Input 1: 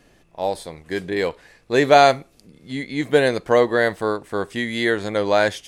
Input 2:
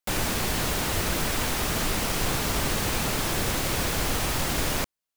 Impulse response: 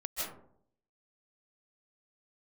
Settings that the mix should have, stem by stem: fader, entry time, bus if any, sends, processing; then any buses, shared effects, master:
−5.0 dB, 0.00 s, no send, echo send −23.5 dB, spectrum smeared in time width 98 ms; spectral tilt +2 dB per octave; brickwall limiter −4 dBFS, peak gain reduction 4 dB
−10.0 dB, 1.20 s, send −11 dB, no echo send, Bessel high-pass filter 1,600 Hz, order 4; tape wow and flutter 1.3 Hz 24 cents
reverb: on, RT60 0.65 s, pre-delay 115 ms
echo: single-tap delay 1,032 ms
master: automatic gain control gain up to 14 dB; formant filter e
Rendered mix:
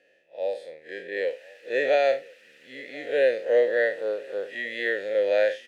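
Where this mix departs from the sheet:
stem 1 −5.0 dB → +6.0 dB
master: missing automatic gain control gain up to 14 dB

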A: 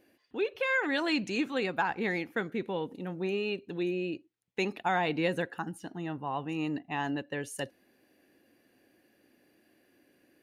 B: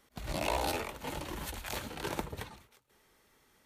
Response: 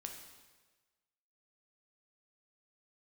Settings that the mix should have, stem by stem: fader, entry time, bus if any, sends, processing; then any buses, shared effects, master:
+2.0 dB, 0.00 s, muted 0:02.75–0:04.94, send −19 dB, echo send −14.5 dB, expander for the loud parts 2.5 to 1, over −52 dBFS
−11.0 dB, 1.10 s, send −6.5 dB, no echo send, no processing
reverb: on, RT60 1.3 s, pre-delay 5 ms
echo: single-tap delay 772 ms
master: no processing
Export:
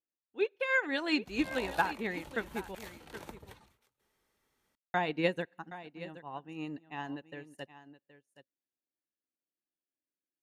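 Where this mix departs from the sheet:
stem B: send off
reverb return −8.5 dB

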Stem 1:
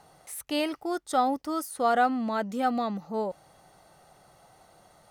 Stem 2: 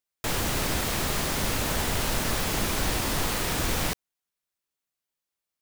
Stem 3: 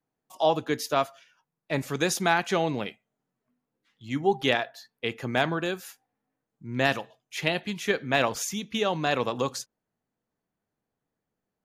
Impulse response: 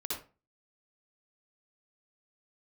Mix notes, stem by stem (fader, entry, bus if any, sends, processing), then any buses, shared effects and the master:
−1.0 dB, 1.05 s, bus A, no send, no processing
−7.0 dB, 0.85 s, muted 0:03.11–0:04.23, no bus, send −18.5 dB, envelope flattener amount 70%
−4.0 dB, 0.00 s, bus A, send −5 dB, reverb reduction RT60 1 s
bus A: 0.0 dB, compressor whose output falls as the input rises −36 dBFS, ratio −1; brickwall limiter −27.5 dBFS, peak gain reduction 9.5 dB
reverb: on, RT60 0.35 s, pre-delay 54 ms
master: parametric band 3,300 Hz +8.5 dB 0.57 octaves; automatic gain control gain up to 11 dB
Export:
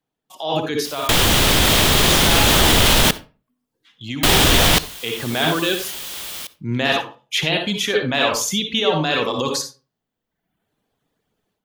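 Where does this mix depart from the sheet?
stem 1: muted
stem 2 −7.0 dB → +3.5 dB

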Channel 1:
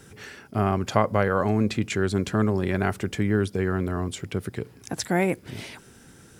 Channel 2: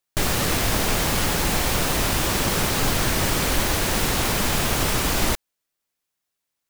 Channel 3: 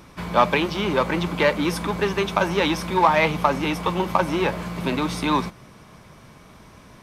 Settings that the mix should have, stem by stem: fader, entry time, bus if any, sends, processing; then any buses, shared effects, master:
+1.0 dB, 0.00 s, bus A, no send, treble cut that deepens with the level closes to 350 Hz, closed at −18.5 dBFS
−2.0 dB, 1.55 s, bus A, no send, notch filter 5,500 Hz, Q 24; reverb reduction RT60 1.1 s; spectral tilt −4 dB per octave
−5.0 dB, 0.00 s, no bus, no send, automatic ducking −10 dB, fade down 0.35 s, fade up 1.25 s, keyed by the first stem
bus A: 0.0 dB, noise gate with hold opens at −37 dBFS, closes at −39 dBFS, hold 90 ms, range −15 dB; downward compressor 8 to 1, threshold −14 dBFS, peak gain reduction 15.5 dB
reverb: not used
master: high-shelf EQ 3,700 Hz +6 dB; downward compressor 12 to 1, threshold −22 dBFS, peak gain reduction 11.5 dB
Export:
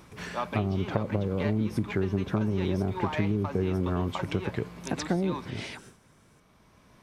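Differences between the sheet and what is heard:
stem 2: muted
master: missing high-shelf EQ 3,700 Hz +6 dB

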